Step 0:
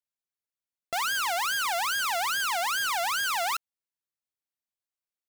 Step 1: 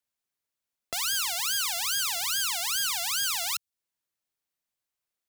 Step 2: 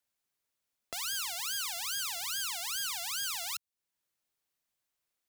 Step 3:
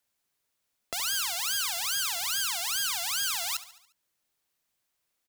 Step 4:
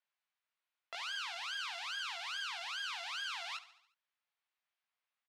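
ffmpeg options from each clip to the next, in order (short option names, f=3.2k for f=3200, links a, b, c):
-filter_complex "[0:a]acrossover=split=150|3000[a][b][c];[b]acompressor=threshold=-44dB:ratio=10[d];[a][d][c]amix=inputs=3:normalize=0,volume=5.5dB"
-af "alimiter=level_in=3dB:limit=-24dB:level=0:latency=1:release=493,volume=-3dB,volume=2dB"
-af "aecho=1:1:71|142|213|284|355:0.168|0.0907|0.049|0.0264|0.0143,volume=5.5dB"
-filter_complex "[0:a]asuperpass=centerf=1600:order=4:qfactor=0.61,asplit=2[a][b];[b]adelay=19,volume=-3.5dB[c];[a][c]amix=inputs=2:normalize=0,volume=-7dB"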